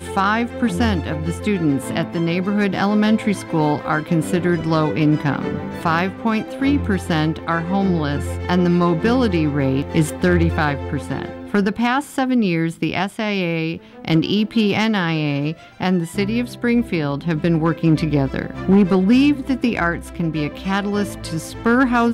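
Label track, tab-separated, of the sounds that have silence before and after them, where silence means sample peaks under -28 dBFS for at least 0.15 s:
14.050000	15.530000	sound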